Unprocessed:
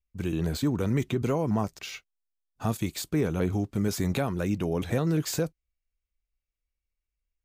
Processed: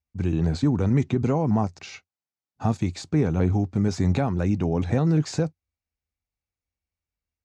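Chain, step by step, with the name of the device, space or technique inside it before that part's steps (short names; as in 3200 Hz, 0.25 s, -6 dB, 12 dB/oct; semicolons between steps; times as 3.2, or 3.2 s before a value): car door speaker (speaker cabinet 82–6800 Hz, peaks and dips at 89 Hz +9 dB, 150 Hz +4 dB, 250 Hz +4 dB, 800 Hz +7 dB, 3200 Hz -6 dB); low shelf 330 Hz +3.5 dB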